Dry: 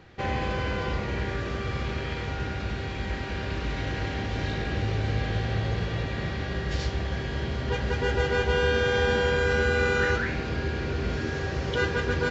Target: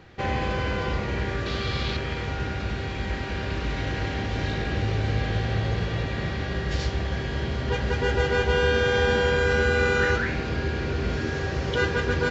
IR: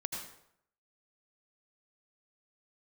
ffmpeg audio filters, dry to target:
-filter_complex "[0:a]asettb=1/sr,asplit=3[a][b][c];[a]atrim=end=1.464[d];[b]atrim=start=1.46:end=1.97,asetpts=PTS-STARTPTS,afade=t=in:d=0.004:c=qsin,afade=t=out:st=0.506:d=0.004:c=qsin,equalizer=f=4k:t=o:w=0.87:g=11.5[e];[c]atrim=start=1.966[f];[d][e]acrossfade=d=0.004:c1=hsin:c2=qsin[g];[g][f]acrossfade=d=0.004:c1=qsin:c2=hsin,volume=2dB"

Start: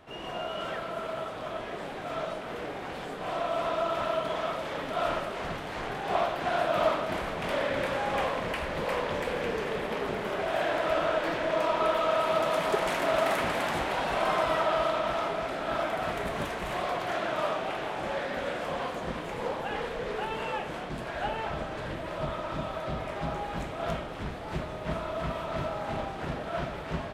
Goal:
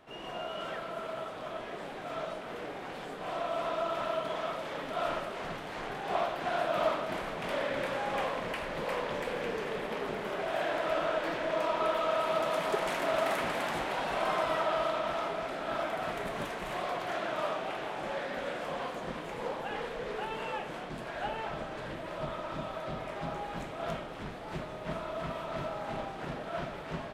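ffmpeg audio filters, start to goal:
-af "equalizer=f=71:w=1.6:g=-10.5,volume=-3.5dB"

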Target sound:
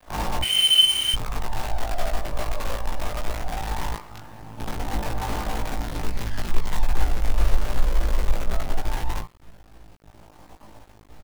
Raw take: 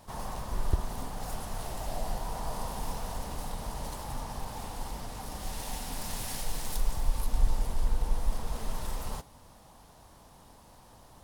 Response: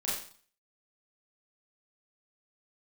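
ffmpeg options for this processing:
-filter_complex "[0:a]asoftclip=type=tanh:threshold=-16dB,aphaser=in_gain=1:out_gain=1:delay=1.8:decay=0.64:speed=0.19:type=sinusoidal,asettb=1/sr,asplit=3[a][b][c];[a]atrim=end=3.904[d];[b]atrim=start=3.9:end=4.58,asetpts=PTS-STARTPTS,afade=t=in:d=0.004:c=qsin,afade=t=out:st=0.676:d=0.004:c=qsin,highpass=120[e];[c]atrim=start=4.576[f];[d][e]acrossfade=d=0.004:c1=hsin:c2=qsin[g];[g][f]acrossfade=d=0.004:c1=qsin:c2=hsin[h];[1:a]atrim=start_sample=2205,afade=t=out:st=0.19:d=0.01,atrim=end_sample=8820,asetrate=66150,aresample=44100[i];[h][i]afir=irnorm=-1:irlink=0,asettb=1/sr,asplit=3[j][k][l];[j]atrim=end=0.424[m];[k]atrim=start=0.42:end=1.14,asetpts=PTS-STARTPTS,afade=t=in:d=0.004:c=qsin,afade=t=out:st=0.716:d=0.004:c=qsin,lowpass=f=2.6k:t=q:w=0.5098,lowpass=f=2.6k:t=q:w=0.6013,lowpass=f=2.6k:t=q:w=0.9,lowpass=f=2.6k:t=q:w=2.563,afreqshift=-3100[n];[l]atrim=start=1.136[o];[m][n]acrossfade=d=0.004:c1=hsin:c2=qsin[p];[p][o]acrossfade=d=0.004:c1=qsin:c2=hsin,adynamicsmooth=sensitivity=6.5:basefreq=890,acrusher=bits=6:dc=4:mix=0:aa=0.000001,asplit=2[q][r];[r]adelay=18,volume=-2.5dB[s];[q][s]amix=inputs=2:normalize=0"

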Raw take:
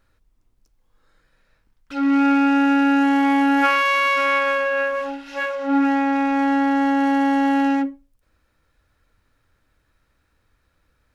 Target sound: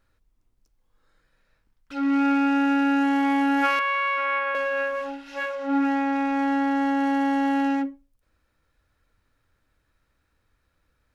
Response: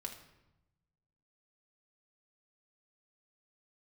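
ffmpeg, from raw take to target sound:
-filter_complex "[0:a]asettb=1/sr,asplit=3[a][b][c];[a]atrim=end=3.794[d];[b]atrim=start=3.79:end=4.55,asetpts=PTS-STARTPTS,afade=t=in:d=0.004:c=qsin,afade=t=out:st=0.756:d=0.004:c=qsin,acrossover=split=520 3000:gain=0.178 1 0.112[e][f][g];[e][f][g]amix=inputs=3:normalize=0[h];[c]atrim=start=4.546[i];[d][h]acrossfade=d=0.004:c1=hsin:c2=qsin[j];[j][i]acrossfade=d=0.004:c1=qsin:c2=hsin,volume=-4.5dB"

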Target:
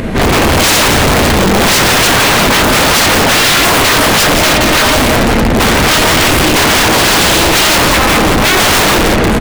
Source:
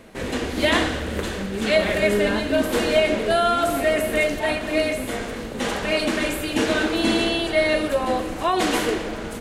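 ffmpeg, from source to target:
-filter_complex "[0:a]bass=f=250:g=10,treble=f=4k:g=-7,aeval=exprs='(mod(7.5*val(0)+1,2)-1)/7.5':c=same,asplit=2[a][b];[b]adelay=174.9,volume=-6dB,highshelf=f=4k:g=-3.94[c];[a][c]amix=inputs=2:normalize=0,volume=32.5dB,asoftclip=hard,volume=-32.5dB,acompressor=mode=upward:threshold=-36dB:ratio=2.5,alimiter=level_in=31.5dB:limit=-1dB:release=50:level=0:latency=1,volume=-7dB"

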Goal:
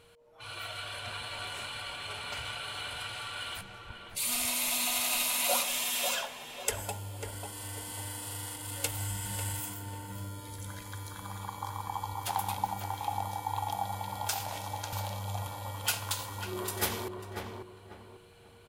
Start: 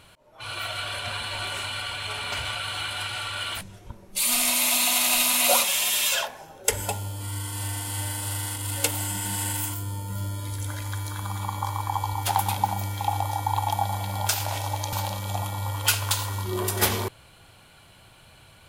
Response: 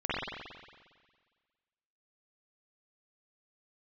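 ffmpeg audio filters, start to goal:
-filter_complex "[0:a]asplit=2[a][b];[b]adelay=544,lowpass=f=1.6k:p=1,volume=-4.5dB,asplit=2[c][d];[d]adelay=544,lowpass=f=1.6k:p=1,volume=0.35,asplit=2[e][f];[f]adelay=544,lowpass=f=1.6k:p=1,volume=0.35,asplit=2[g][h];[h]adelay=544,lowpass=f=1.6k:p=1,volume=0.35[i];[a][c][e][g][i]amix=inputs=5:normalize=0,asplit=3[j][k][l];[j]afade=t=out:st=8.84:d=0.02[m];[k]asubboost=boost=4.5:cutoff=110,afade=t=in:st=8.84:d=0.02,afade=t=out:st=9.59:d=0.02[n];[l]afade=t=in:st=9.59:d=0.02[o];[m][n][o]amix=inputs=3:normalize=0,aeval=exprs='val(0)+0.00251*sin(2*PI*470*n/s)':c=same,volume=-8.5dB"

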